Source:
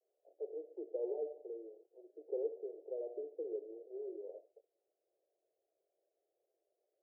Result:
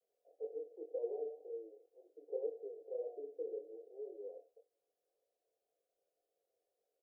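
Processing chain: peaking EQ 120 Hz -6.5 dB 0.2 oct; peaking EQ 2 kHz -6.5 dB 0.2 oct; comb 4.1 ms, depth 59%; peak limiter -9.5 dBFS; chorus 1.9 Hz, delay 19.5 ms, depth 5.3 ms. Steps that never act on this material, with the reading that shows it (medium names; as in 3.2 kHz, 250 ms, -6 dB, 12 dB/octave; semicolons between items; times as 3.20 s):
peaking EQ 120 Hz: input has nothing below 290 Hz; peaking EQ 2 kHz: input has nothing above 760 Hz; peak limiter -9.5 dBFS: peak at its input -24.5 dBFS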